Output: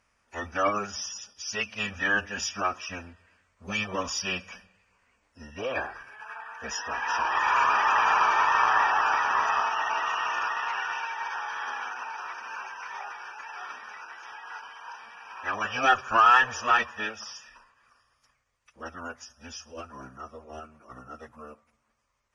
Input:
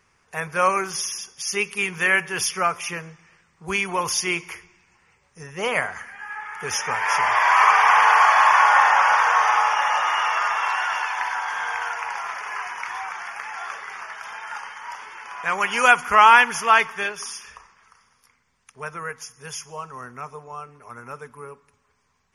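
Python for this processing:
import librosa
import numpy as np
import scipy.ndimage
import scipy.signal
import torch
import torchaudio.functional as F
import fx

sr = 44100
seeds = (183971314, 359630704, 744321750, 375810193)

y = fx.pitch_keep_formants(x, sr, semitones=-11.0)
y = fx.cheby_harmonics(y, sr, harmonics=(6,), levels_db=(-35,), full_scale_db=-1.5)
y = y * 10.0 ** (-5.5 / 20.0)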